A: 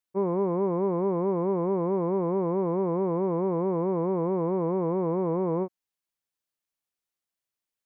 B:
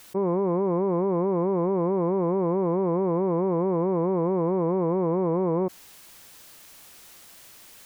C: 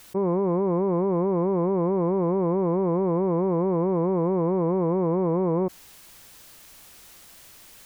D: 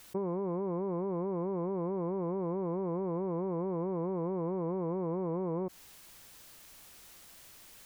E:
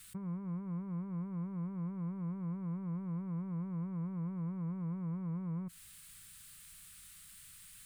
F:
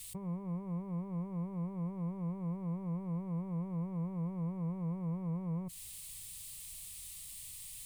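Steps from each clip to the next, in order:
fast leveller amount 100%
low shelf 100 Hz +8 dB
compressor, threshold -25 dBFS, peak gain reduction 5.5 dB; gain -5.5 dB
EQ curve 170 Hz 0 dB, 360 Hz -24 dB, 840 Hz -21 dB, 1300 Hz -5 dB, 3900 Hz -3 dB, 6000 Hz -8 dB, 8700 Hz +5 dB, 15000 Hz -6 dB; gain +1.5 dB
fixed phaser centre 610 Hz, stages 4; gain +8 dB

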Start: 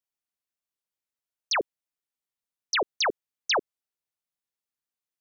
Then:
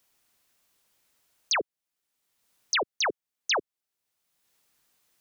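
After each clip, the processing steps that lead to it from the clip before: three-band squash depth 70%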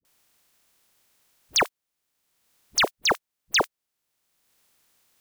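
spectral contrast lowered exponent 0.44; dispersion highs, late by 50 ms, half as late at 410 Hz; gain +4.5 dB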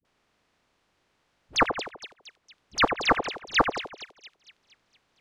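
tape spacing loss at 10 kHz 25 dB; split-band echo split 2600 Hz, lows 83 ms, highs 0.231 s, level -8.5 dB; Doppler distortion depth 0.68 ms; gain +4.5 dB

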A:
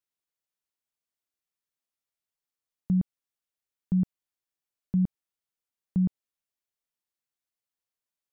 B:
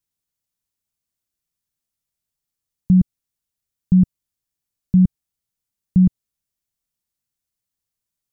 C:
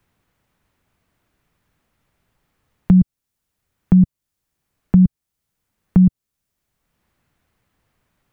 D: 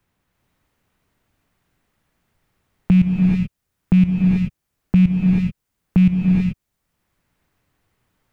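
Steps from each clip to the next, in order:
tone controls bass +14 dB, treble +7 dB; gain +1 dB
three-band squash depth 70%; gain +4 dB
rattling part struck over -15 dBFS, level -21 dBFS; non-linear reverb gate 0.46 s rising, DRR -0.5 dB; gain -3 dB

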